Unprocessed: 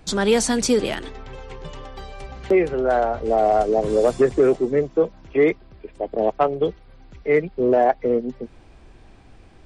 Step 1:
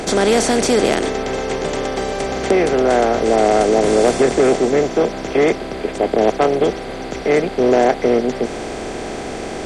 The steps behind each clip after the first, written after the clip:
compressor on every frequency bin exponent 0.4
level −1 dB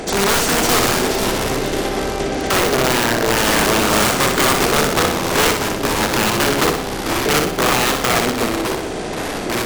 wrap-around overflow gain 9.5 dB
delay with pitch and tempo change per echo 316 ms, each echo −4 semitones, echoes 3, each echo −6 dB
on a send: flutter between parallel walls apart 10.4 metres, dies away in 0.6 s
on the sum: level −2 dB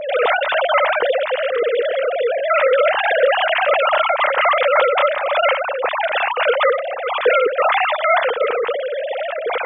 three sine waves on the formant tracks

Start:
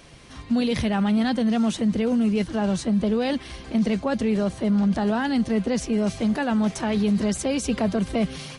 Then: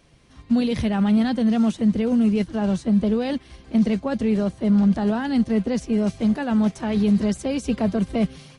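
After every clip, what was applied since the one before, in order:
low-shelf EQ 410 Hz +5 dB
expander for the loud parts 1.5 to 1, over −36 dBFS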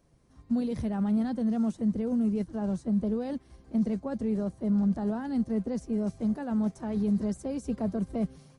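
parametric band 2,900 Hz −13 dB 1.6 octaves
level −8 dB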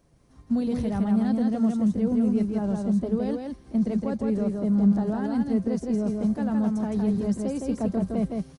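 single-tap delay 163 ms −3.5 dB
level +3 dB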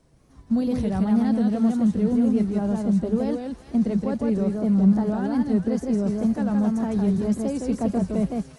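tape wow and flutter 91 cents
delay with a high-pass on its return 405 ms, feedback 62%, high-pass 1,500 Hz, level −9 dB
level +2.5 dB

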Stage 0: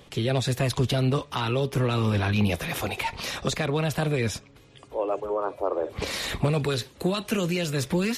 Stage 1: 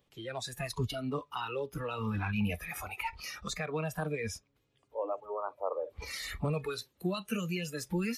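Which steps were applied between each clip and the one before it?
noise reduction from a noise print of the clip's start 16 dB
level −6.5 dB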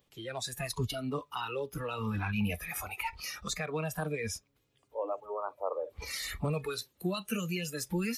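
high-shelf EQ 5,600 Hz +6.5 dB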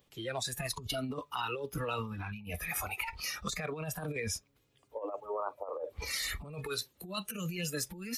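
compressor whose output falls as the input rises −36 dBFS, ratio −0.5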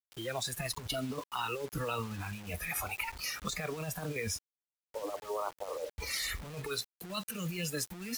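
bit reduction 8 bits

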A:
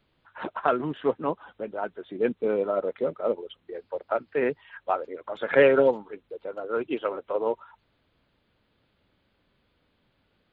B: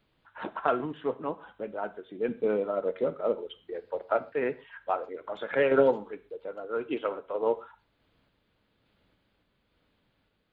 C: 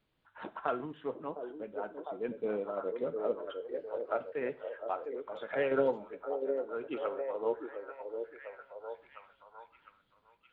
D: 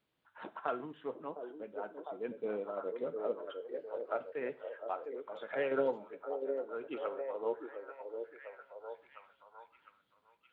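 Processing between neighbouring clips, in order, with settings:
sample-and-hold tremolo; reverb whose tail is shaped and stops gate 160 ms falling, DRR 11.5 dB
echo through a band-pass that steps 705 ms, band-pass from 410 Hz, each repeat 0.7 octaves, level −3.5 dB; level −7 dB
high-pass filter 170 Hz 6 dB per octave; level −2.5 dB

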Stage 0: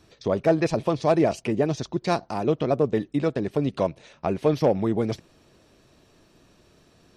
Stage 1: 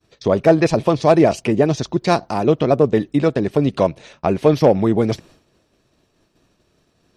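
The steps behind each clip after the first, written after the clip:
downward expander −48 dBFS
level +7.5 dB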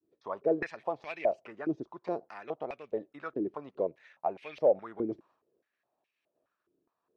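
band-pass on a step sequencer 4.8 Hz 330–2,400 Hz
level −7.5 dB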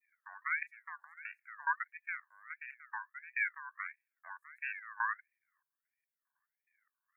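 inverse Chebyshev band-stop filter 1,000–4,000 Hz, stop band 70 dB
ring modulator whose carrier an LFO sweeps 1,700 Hz, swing 25%, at 1.5 Hz
level +7 dB

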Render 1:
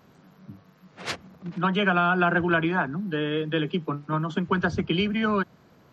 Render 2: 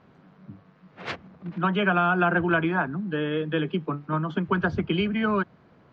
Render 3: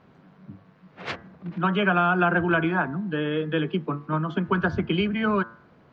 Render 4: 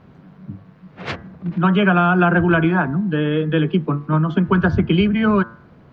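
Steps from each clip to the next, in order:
low-pass filter 3,000 Hz 12 dB per octave
hum removal 113.6 Hz, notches 18; level +1 dB
low-shelf EQ 210 Hz +10 dB; level +4 dB

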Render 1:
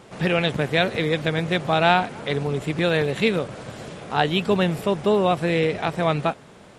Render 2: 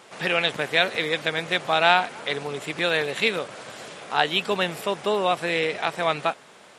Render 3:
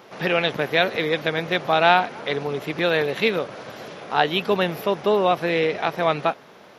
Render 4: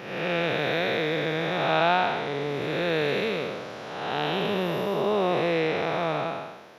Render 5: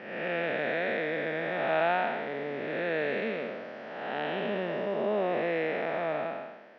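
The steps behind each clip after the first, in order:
high-pass filter 960 Hz 6 dB per octave; level +3 dB
drawn EQ curve 360 Hz 0 dB, 3,000 Hz −7 dB, 6,000 Hz −7 dB, 8,500 Hz −27 dB, 12,000 Hz 0 dB; level +5.5 dB
spectrum smeared in time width 353 ms
loudspeaker in its box 200–4,300 Hz, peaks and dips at 230 Hz +9 dB, 610 Hz +7 dB, 1,100 Hz −4 dB, 1,800 Hz +8 dB, 3,800 Hz −9 dB; level −7 dB

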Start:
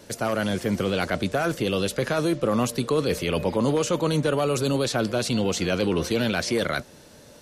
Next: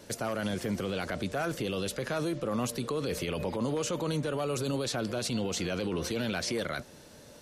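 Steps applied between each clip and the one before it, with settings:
brickwall limiter −20.5 dBFS, peak gain reduction 8.5 dB
level −3 dB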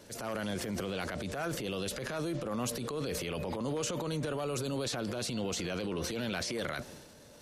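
transient designer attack −8 dB, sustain +7 dB
level −3 dB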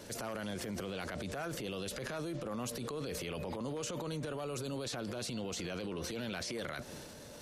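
downward compressor 3 to 1, threshold −44 dBFS, peak gain reduction 10 dB
level +4.5 dB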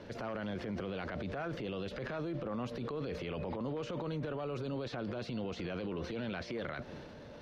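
high-frequency loss of the air 280 metres
level +2 dB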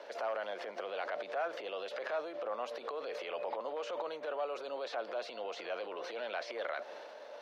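four-pole ladder high-pass 510 Hz, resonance 40%
level +9.5 dB

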